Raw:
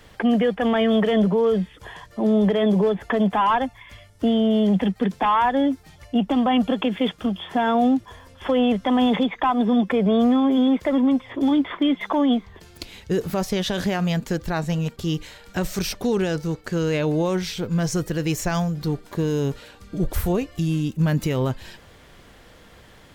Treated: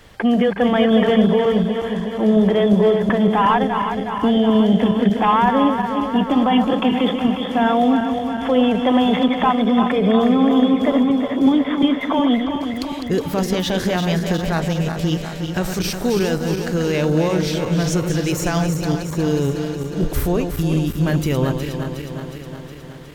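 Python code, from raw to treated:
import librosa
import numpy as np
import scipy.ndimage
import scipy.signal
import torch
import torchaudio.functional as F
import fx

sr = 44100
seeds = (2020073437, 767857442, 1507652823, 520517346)

y = fx.reverse_delay_fb(x, sr, ms=182, feedback_pct=79, wet_db=-7.0)
y = F.gain(torch.from_numpy(y), 2.5).numpy()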